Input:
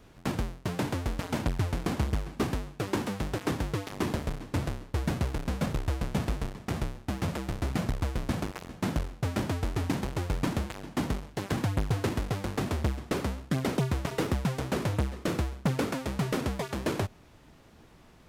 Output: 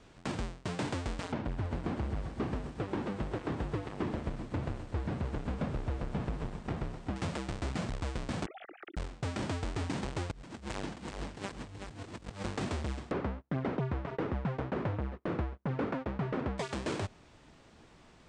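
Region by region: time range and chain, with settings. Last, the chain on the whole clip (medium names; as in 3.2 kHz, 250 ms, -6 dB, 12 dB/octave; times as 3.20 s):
1.32–7.16 s: tape spacing loss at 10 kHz 32 dB + bit-crushed delay 127 ms, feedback 80%, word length 8-bit, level -12 dB
8.46–8.97 s: formants replaced by sine waves + compression 16:1, threshold -42 dBFS + Butterworth band-stop 1 kHz, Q 2.7
10.31–12.45 s: overload inside the chain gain 30 dB + compressor with a negative ratio -39 dBFS, ratio -0.5 + delay 378 ms -6 dB
13.11–16.58 s: low-pass 1.7 kHz + gate -39 dBFS, range -29 dB
whole clip: Chebyshev low-pass 8.6 kHz, order 4; bass shelf 220 Hz -3.5 dB; peak limiter -23.5 dBFS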